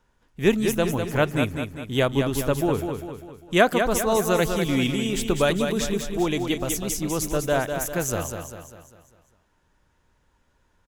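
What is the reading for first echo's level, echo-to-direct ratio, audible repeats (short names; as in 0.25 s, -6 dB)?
-6.5 dB, -5.5 dB, 5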